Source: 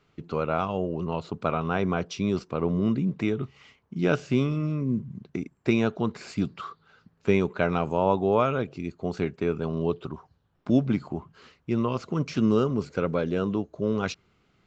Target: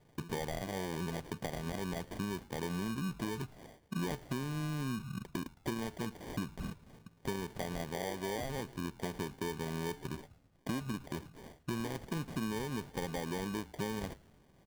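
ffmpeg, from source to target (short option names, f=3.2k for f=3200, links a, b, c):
-filter_complex "[0:a]acrusher=samples=33:mix=1:aa=0.000001,acompressor=threshold=-34dB:ratio=12,asplit=2[a][b];[b]asplit=3[c][d][e];[c]adelay=109,afreqshift=-140,volume=-21.5dB[f];[d]adelay=218,afreqshift=-280,volume=-28.2dB[g];[e]adelay=327,afreqshift=-420,volume=-35dB[h];[f][g][h]amix=inputs=3:normalize=0[i];[a][i]amix=inputs=2:normalize=0,asoftclip=type=tanh:threshold=-26.5dB,volume=1.5dB"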